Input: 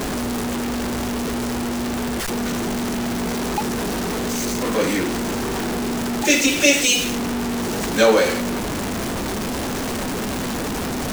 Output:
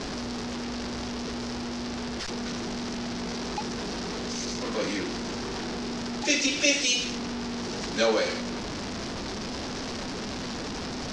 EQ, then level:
transistor ladder low-pass 6,000 Hz, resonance 50%
0.0 dB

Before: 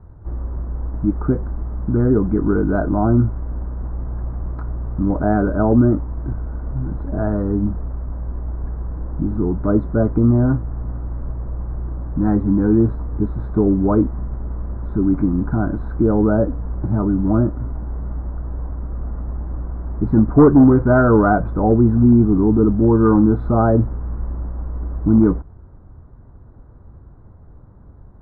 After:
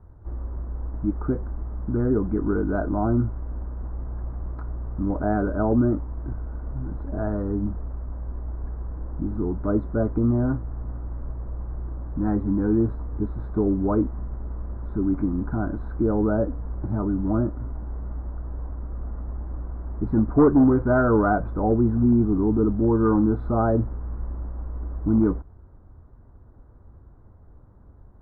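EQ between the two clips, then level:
parametric band 150 Hz −4.5 dB 0.77 octaves
−5.5 dB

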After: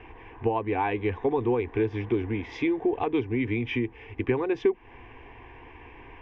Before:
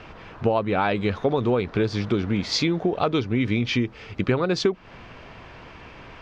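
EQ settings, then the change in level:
high-frequency loss of the air 270 metres
phaser with its sweep stopped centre 890 Hz, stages 8
0.0 dB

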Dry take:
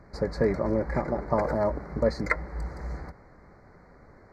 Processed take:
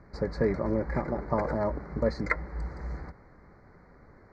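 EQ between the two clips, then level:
high-frequency loss of the air 79 metres
parametric band 650 Hz −3 dB
−1.0 dB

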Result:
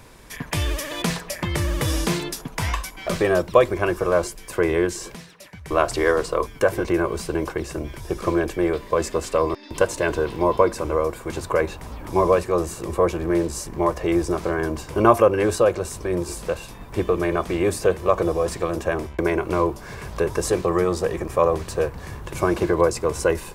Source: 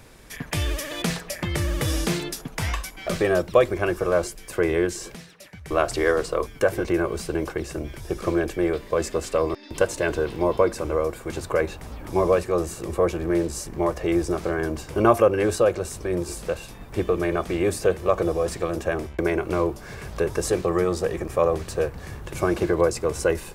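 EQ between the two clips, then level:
parametric band 1,000 Hz +7.5 dB 0.2 octaves
+1.5 dB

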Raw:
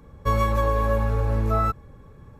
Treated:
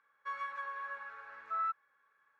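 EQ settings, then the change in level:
four-pole ladder band-pass 1,700 Hz, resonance 60%
−2.0 dB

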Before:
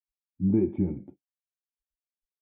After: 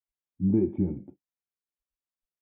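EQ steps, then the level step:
high-shelf EQ 2,100 Hz −9.5 dB
0.0 dB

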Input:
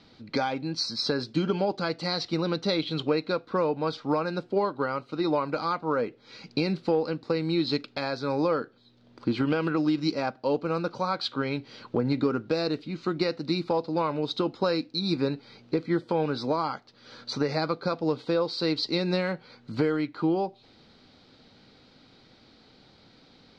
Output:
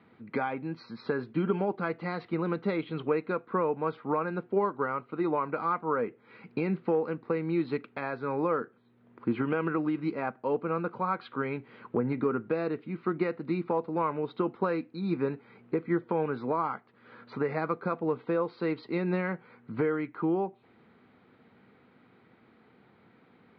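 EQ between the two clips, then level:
loudspeaker in its box 140–2,100 Hz, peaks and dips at 150 Hz −4 dB, 290 Hz −7 dB, 570 Hz −8 dB, 800 Hz −4 dB, 1,500 Hz −3 dB
+1.5 dB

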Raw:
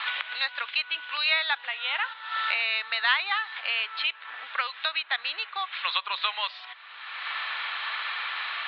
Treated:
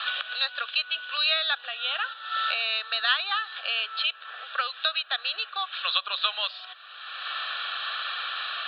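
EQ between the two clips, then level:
bass and treble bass −6 dB, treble +14 dB
high-shelf EQ 2,400 Hz −9 dB
phaser with its sweep stopped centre 1,400 Hz, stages 8
+4.5 dB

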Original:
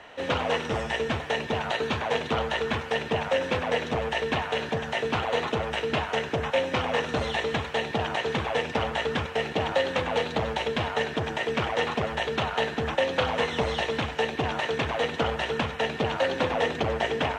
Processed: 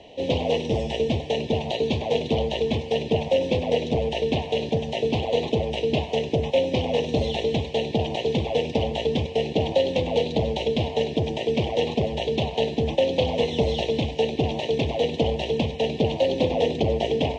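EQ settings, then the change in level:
Butterworth band-reject 1,400 Hz, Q 0.58
high-frequency loss of the air 100 metres
+6.5 dB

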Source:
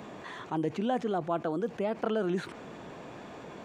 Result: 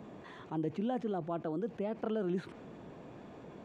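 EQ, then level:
dynamic equaliser 3,000 Hz, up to +4 dB, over −53 dBFS, Q 0.7
tilt shelving filter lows +6 dB, about 750 Hz
−8.0 dB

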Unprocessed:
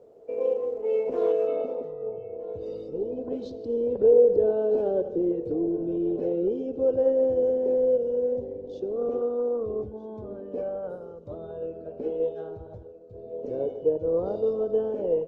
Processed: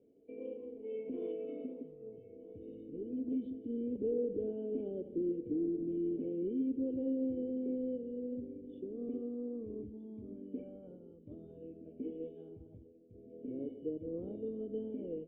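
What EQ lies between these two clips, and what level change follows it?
formant resonators in series i
+1.0 dB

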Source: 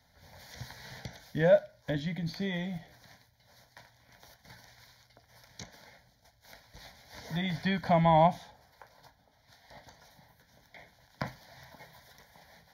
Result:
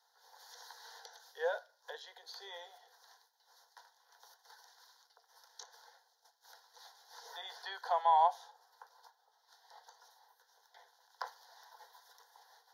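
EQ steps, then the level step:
Butterworth high-pass 460 Hz 72 dB per octave
high-shelf EQ 11,000 Hz −8 dB
phaser with its sweep stopped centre 600 Hz, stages 6
0.0 dB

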